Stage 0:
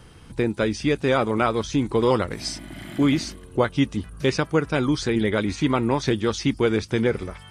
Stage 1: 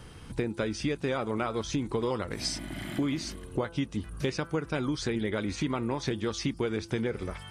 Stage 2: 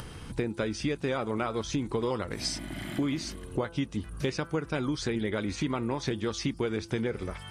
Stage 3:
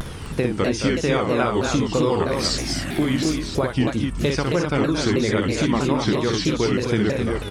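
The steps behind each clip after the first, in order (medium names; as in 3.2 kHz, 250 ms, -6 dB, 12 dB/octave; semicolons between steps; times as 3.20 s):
compression 6:1, threshold -27 dBFS, peak gain reduction 12 dB; de-hum 168.3 Hz, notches 9
upward compressor, threshold -36 dBFS
on a send: loudspeakers at several distances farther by 20 m -5 dB, 77 m -9 dB, 89 m -5 dB; on the sum: vibrato with a chosen wave saw down 3.1 Hz, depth 250 cents; trim +8 dB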